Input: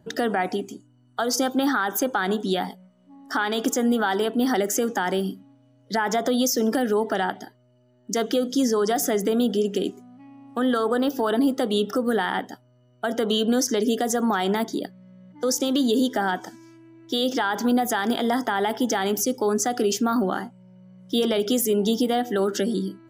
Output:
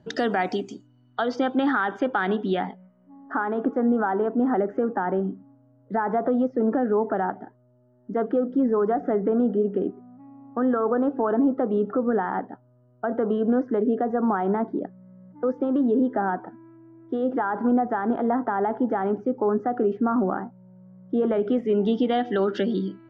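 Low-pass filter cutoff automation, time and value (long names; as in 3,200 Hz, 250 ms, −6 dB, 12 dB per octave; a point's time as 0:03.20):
low-pass filter 24 dB per octave
0:00.73 6,000 Hz
0:01.41 2,900 Hz
0:02.44 2,900 Hz
0:03.43 1,400 Hz
0:21.15 1,400 Hz
0:22.22 3,400 Hz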